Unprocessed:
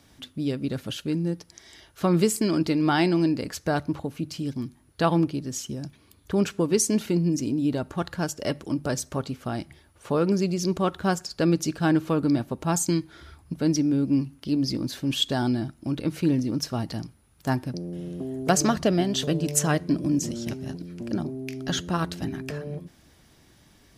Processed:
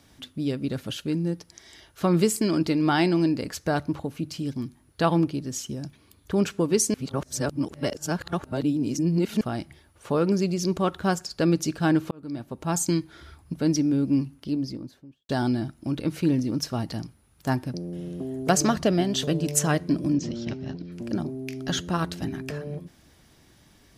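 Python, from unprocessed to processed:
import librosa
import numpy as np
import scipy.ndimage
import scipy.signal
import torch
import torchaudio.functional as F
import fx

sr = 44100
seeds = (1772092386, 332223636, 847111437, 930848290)

y = fx.studio_fade_out(x, sr, start_s=14.17, length_s=1.12)
y = fx.lowpass(y, sr, hz=5100.0, slope=24, at=(20.13, 20.92))
y = fx.edit(y, sr, fx.reverse_span(start_s=6.94, length_s=2.47),
    fx.fade_in_span(start_s=12.11, length_s=0.74), tone=tone)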